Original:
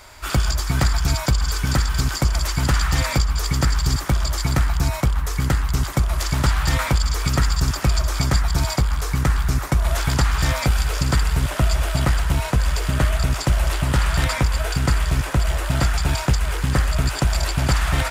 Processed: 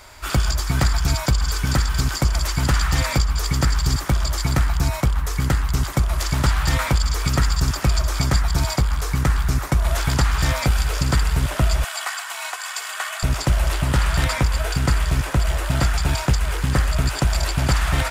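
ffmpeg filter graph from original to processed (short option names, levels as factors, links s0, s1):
-filter_complex "[0:a]asettb=1/sr,asplit=3[s0][s1][s2];[s0]atrim=end=11.844[s3];[s1]atrim=start=11.84:end=13.23,asetpts=PTS-STARTPTS,afade=t=in:d=0.004:c=qsin,afade=t=out:st=1.386:d=0.004:c=qsin,highpass=f=820:w=0.5412,highpass=f=820:w=1.3066,equalizer=f=7500:w=6:g=4.5,aecho=1:1:2.7:0.44,atrim=end_sample=61299[s4];[s2]atrim=start=13.226[s5];[s3][s4]acrossfade=d=0.004:c1=hsin:c2=qsin[s6];[s6][s5]acrossfade=d=0.004:c1=qsin:c2=hsin"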